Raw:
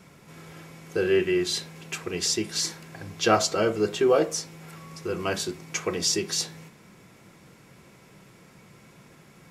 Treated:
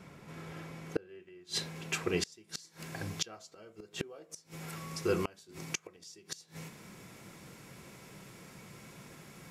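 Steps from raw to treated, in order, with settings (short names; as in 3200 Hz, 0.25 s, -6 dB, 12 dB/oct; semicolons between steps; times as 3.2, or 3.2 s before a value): high shelf 4300 Hz -8 dB, from 1.09 s -2.5 dB, from 2.32 s +4.5 dB; flipped gate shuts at -18 dBFS, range -30 dB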